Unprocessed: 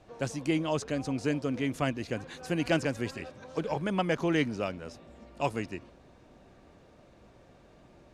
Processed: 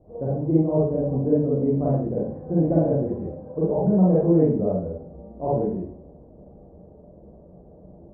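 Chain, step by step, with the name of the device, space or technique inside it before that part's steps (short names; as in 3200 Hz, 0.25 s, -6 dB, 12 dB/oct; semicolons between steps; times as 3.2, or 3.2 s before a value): next room (LPF 620 Hz 24 dB/oct; reverb RT60 0.50 s, pre-delay 34 ms, DRR -8 dB); gain +3 dB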